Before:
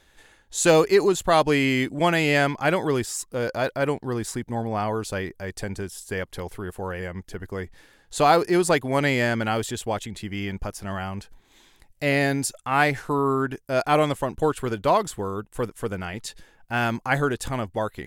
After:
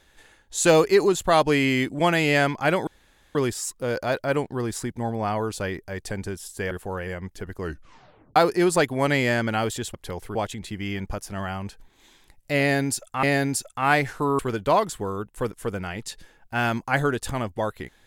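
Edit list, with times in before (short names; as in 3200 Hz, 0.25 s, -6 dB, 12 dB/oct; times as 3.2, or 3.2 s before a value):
2.87 insert room tone 0.48 s
6.23–6.64 move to 9.87
7.52 tape stop 0.77 s
12.12–12.75 loop, 2 plays
13.28–14.57 cut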